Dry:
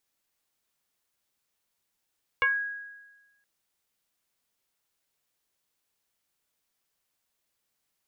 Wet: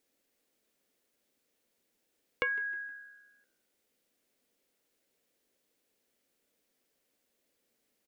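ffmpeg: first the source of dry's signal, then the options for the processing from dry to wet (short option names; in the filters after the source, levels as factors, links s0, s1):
-f lavfi -i "aevalsrc='0.112*pow(10,-3*t/1.2)*sin(2*PI*1650*t+1.7*pow(10,-3*t/0.24)*sin(2*PI*0.35*1650*t))':d=1.02:s=44100"
-filter_complex "[0:a]equalizer=f=125:t=o:w=1:g=-4,equalizer=f=250:t=o:w=1:g=11,equalizer=f=500:t=o:w=1:g=11,equalizer=f=1000:t=o:w=1:g=-5,equalizer=f=2000:t=o:w=1:g=3,acompressor=threshold=0.0224:ratio=2.5,asplit=4[s0][s1][s2][s3];[s1]adelay=156,afreqshift=-67,volume=0.075[s4];[s2]adelay=312,afreqshift=-134,volume=0.0285[s5];[s3]adelay=468,afreqshift=-201,volume=0.0108[s6];[s0][s4][s5][s6]amix=inputs=4:normalize=0"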